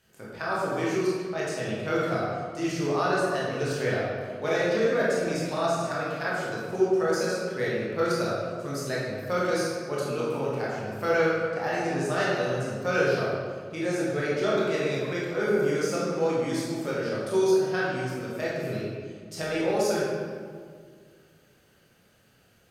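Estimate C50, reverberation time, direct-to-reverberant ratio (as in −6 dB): −2.0 dB, 2.0 s, −7.5 dB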